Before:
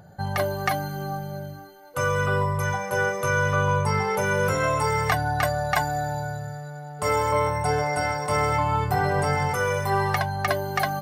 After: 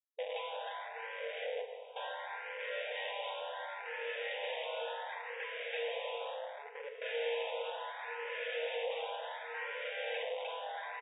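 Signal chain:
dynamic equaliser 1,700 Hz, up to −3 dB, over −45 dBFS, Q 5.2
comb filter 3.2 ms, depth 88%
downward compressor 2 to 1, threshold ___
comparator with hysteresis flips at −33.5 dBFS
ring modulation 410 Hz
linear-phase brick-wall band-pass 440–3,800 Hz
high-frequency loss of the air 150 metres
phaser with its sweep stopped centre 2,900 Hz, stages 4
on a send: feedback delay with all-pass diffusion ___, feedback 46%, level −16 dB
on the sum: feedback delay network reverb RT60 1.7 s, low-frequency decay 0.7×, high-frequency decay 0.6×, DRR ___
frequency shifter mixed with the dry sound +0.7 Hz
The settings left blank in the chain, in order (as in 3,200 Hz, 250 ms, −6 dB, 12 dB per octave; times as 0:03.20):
−26 dBFS, 774 ms, 4.5 dB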